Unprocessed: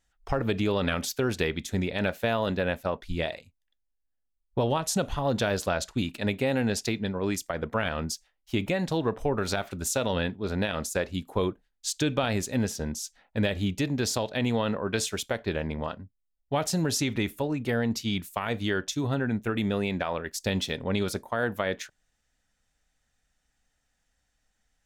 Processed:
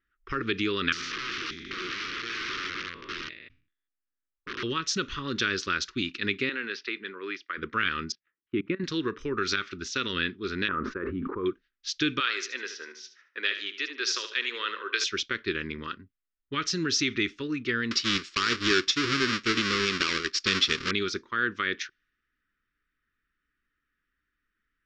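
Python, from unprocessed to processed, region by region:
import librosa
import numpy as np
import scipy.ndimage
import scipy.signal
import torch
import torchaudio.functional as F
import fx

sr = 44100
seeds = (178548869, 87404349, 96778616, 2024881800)

y = fx.chain(x, sr, fx.spec_steps(hold_ms=200),
    fx.overflow_wrap(gain_db=30.0),
    fx.sustainer(db_per_s=110.0), at=(0.92, 4.63))
y = fx.chain(y, sr, fx.highpass(hz=500.0, slope=12),
    fx.transient(attack_db=0, sustain_db=4),
    fx.air_absorb(metres=240.0), at=(6.49, 7.58))
y = fx.chain(y, sr, fx.tilt_eq(slope=-3.0),
    fx.level_steps(step_db=22),
    fx.bandpass_edges(low_hz=160.0, high_hz=2400.0), at=(8.12, 8.84))
y = fx.chain(y, sr, fx.lowpass(hz=1200.0, slope=24),
    fx.low_shelf(hz=450.0, db=-6.5),
    fx.env_flatten(amount_pct=100), at=(10.68, 11.46))
y = fx.chain(y, sr, fx.highpass(hz=470.0, slope=24),
    fx.echo_feedback(ms=75, feedback_pct=32, wet_db=-10.0), at=(12.2, 15.04))
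y = fx.chain(y, sr, fx.halfwave_hold(),
    fx.bass_treble(bass_db=-5, treble_db=4),
    fx.notch(hz=6100.0, q=8.4), at=(17.91, 20.91))
y = scipy.signal.sosfilt(scipy.signal.ellip(4, 1.0, 60, 5800.0, 'lowpass', fs=sr, output='sos'), y)
y = fx.env_lowpass(y, sr, base_hz=1500.0, full_db=-26.0)
y = fx.curve_eq(y, sr, hz=(110.0, 210.0, 370.0, 730.0, 1200.0), db=(0, 3, 13, -24, 14))
y = y * 10.0 ** (-8.5 / 20.0)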